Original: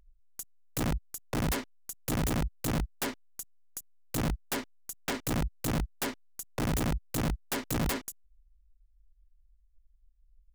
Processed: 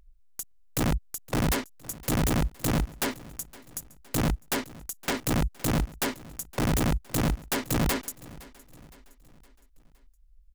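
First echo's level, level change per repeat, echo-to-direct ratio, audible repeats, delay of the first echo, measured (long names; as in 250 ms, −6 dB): −20.5 dB, −6.5 dB, −19.5 dB, 3, 514 ms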